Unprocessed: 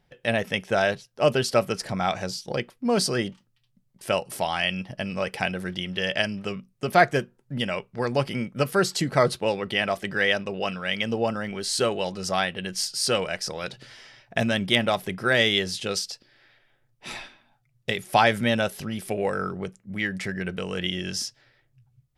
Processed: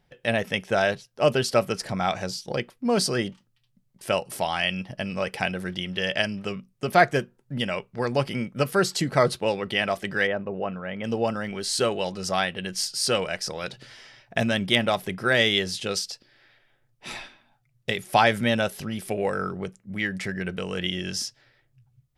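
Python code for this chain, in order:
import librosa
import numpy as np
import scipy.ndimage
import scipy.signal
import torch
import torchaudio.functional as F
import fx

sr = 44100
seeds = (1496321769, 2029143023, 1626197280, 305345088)

y = fx.lowpass(x, sr, hz=1200.0, slope=12, at=(10.26, 11.03), fade=0.02)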